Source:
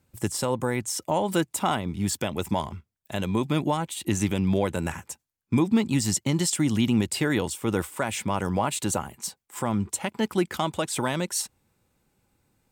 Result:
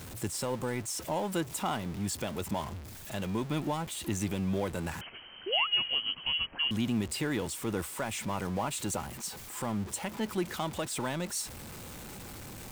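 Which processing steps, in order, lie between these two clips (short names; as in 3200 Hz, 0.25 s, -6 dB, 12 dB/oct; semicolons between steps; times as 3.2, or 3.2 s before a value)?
zero-crossing step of -29.5 dBFS; 5.01–6.71 inverted band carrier 3100 Hz; 5.46–5.67 painted sound rise 340–1400 Hz -25 dBFS; gain -9 dB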